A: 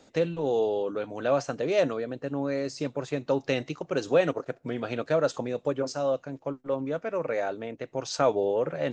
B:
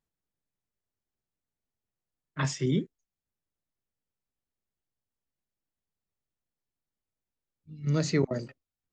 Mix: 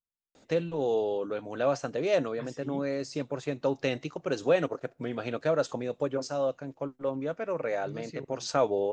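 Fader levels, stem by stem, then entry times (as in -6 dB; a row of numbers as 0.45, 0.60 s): -2.0, -16.0 dB; 0.35, 0.00 s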